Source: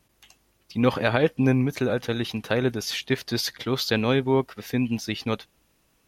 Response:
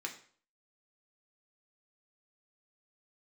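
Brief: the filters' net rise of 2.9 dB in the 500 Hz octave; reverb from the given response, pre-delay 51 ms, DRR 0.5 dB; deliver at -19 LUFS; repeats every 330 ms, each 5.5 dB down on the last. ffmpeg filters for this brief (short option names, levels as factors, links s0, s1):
-filter_complex "[0:a]equalizer=f=500:t=o:g=3.5,aecho=1:1:330|660|990|1320|1650|1980|2310:0.531|0.281|0.149|0.079|0.0419|0.0222|0.0118,asplit=2[s0][s1];[1:a]atrim=start_sample=2205,adelay=51[s2];[s1][s2]afir=irnorm=-1:irlink=0,volume=0.891[s3];[s0][s3]amix=inputs=2:normalize=0,volume=1.12"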